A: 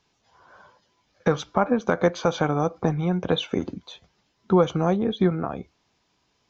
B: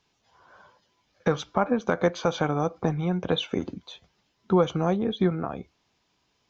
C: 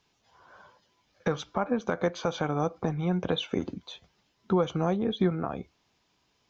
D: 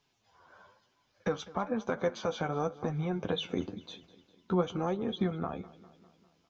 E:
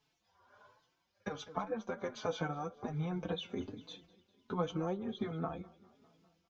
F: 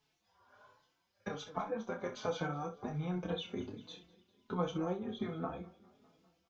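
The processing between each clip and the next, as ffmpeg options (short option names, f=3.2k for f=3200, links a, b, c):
-af "equalizer=f=3k:w=1.5:g=2,volume=-2.5dB"
-af "alimiter=limit=-14.5dB:level=0:latency=1:release=350"
-af "flanger=delay=6.8:depth=5.5:regen=37:speed=1:shape=triangular,aecho=1:1:201|402|603|804|1005:0.106|0.0604|0.0344|0.0196|0.0112"
-filter_complex "[0:a]tremolo=f=1.3:d=0.42,asplit=2[a][b];[b]adelay=4.2,afreqshift=1.3[c];[a][c]amix=inputs=2:normalize=1"
-af "aecho=1:1:28|63:0.447|0.237,volume=-1dB"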